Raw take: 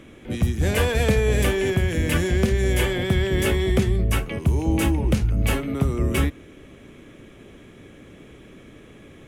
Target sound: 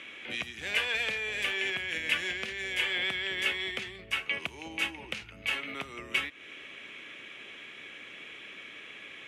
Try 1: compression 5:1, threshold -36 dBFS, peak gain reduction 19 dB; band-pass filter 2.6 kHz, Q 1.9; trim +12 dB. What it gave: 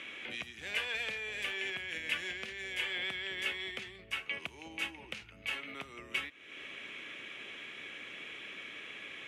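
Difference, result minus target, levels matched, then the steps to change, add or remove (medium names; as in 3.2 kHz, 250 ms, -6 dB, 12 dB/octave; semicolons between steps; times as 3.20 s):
compression: peak gain reduction +6 dB
change: compression 5:1, threshold -28.5 dBFS, peak gain reduction 13 dB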